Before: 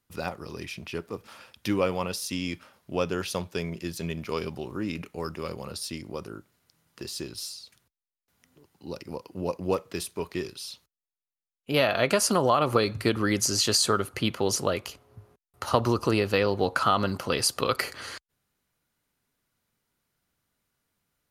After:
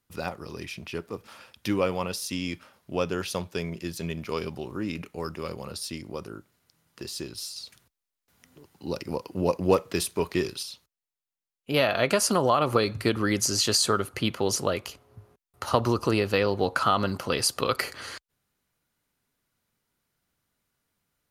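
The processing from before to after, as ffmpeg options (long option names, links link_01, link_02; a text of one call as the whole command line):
ffmpeg -i in.wav -filter_complex "[0:a]asettb=1/sr,asplit=3[link_01][link_02][link_03];[link_01]atrim=end=7.564[link_04];[link_02]atrim=start=7.56:end=10.63,asetpts=PTS-STARTPTS,afade=type=in:duration=0.004:curve=qsin,afade=type=out:start_time=3.066:duration=0.004:curve=qsin,acontrast=38[link_05];[link_03]atrim=start=10.626[link_06];[link_04][link_05]acrossfade=duration=0.004:curve1=hsin:curve2=qsin[link_07];[link_07][link_06]acrossfade=duration=0.004:curve1=qsin:curve2=hsin" out.wav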